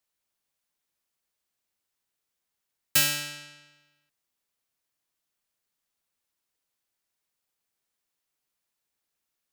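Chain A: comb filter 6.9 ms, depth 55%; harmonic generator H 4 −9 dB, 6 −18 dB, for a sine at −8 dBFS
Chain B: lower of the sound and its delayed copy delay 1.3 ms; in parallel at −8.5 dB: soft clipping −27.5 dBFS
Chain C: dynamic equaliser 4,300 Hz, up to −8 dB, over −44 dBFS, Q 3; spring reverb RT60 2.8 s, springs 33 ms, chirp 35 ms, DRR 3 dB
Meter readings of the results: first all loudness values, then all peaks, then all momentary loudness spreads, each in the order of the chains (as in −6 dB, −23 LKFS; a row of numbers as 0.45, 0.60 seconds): −23.5, −25.0, −26.5 LKFS; −5.5, −10.5, −10.0 dBFS; 17, 16, 20 LU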